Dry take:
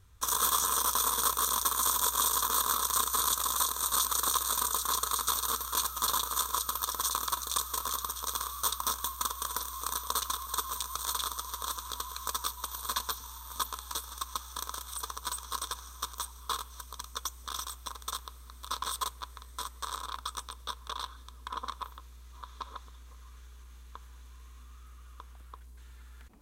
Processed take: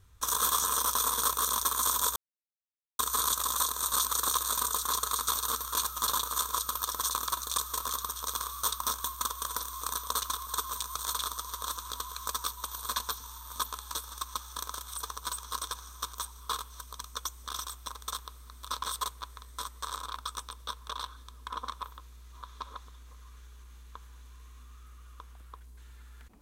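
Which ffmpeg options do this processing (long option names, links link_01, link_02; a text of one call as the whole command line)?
ffmpeg -i in.wav -filter_complex "[0:a]asplit=3[link_01][link_02][link_03];[link_01]atrim=end=2.16,asetpts=PTS-STARTPTS,afade=type=out:start_time=2.156:duration=0.004:curve=hsin[link_04];[link_02]atrim=start=2.16:end=2.99,asetpts=PTS-STARTPTS,volume=0[link_05];[link_03]atrim=start=2.99,asetpts=PTS-STARTPTS,afade=type=in:duration=0.004:curve=hsin[link_06];[link_04][link_05][link_06]concat=n=3:v=0:a=1" out.wav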